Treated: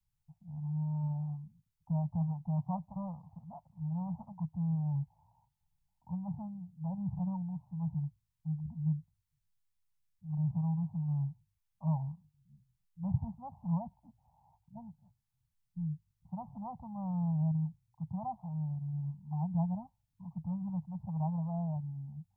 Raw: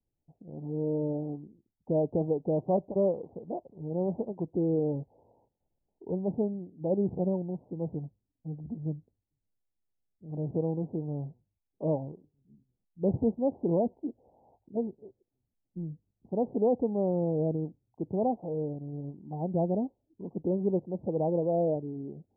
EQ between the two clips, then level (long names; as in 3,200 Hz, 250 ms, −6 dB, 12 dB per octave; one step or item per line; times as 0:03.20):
Chebyshev band-stop filter 160–930 Hz, order 3
+3.5 dB